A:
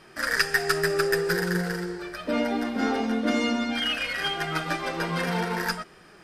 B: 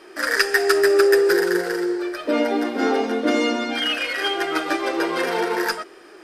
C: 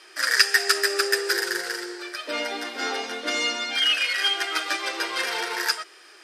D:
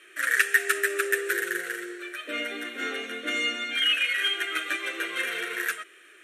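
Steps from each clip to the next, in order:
resonant low shelf 230 Hz -13 dB, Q 3; gain +4 dB
band-pass 5600 Hz, Q 0.56; gain +5 dB
fixed phaser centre 2100 Hz, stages 4

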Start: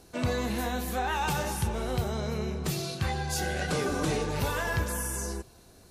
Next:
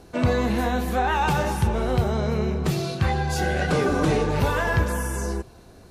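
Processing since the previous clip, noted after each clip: high shelf 3800 Hz -11.5 dB; gain +8 dB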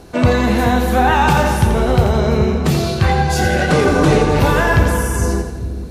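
split-band echo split 370 Hz, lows 0.426 s, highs 85 ms, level -7.5 dB; gain +8 dB

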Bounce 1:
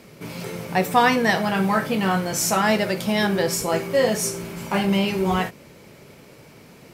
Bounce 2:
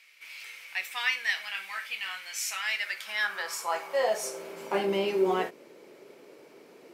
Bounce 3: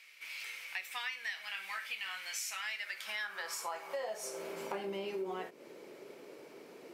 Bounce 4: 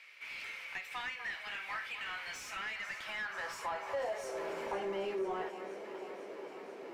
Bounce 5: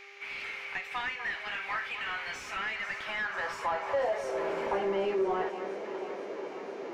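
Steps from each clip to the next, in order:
high shelf 5800 Hz -5 dB; high-pass sweep 2300 Hz -> 370 Hz, 2.7–4.8; gain -7.5 dB
compressor 6:1, threshold -37 dBFS, peak gain reduction 15.5 dB
on a send: echo with dull and thin repeats by turns 0.246 s, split 1800 Hz, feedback 84%, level -12 dB; on the sum: overdrive pedal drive 18 dB, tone 1000 Hz, clips at -22 dBFS; gain -2.5 dB
LPF 2700 Hz 6 dB/oct; buzz 400 Hz, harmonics 17, -64 dBFS -5 dB/oct; gain +7.5 dB

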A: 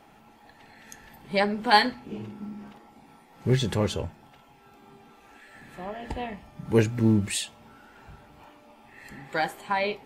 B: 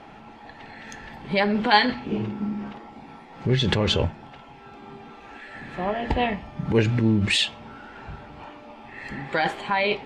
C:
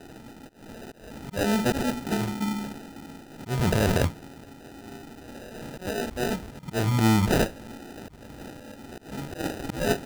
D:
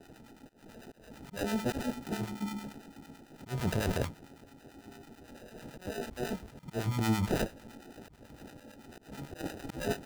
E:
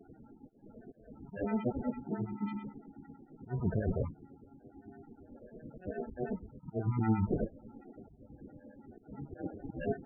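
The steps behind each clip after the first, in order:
LPF 4100 Hz 12 dB/oct; dynamic EQ 3200 Hz, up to +5 dB, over -45 dBFS, Q 0.95; in parallel at +1 dB: negative-ratio compressor -30 dBFS, ratio -0.5
auto swell 0.2 s; sample-and-hold 40×
harmonic tremolo 9 Hz, depth 70%, crossover 790 Hz; gain -5.5 dB
loudest bins only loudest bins 16

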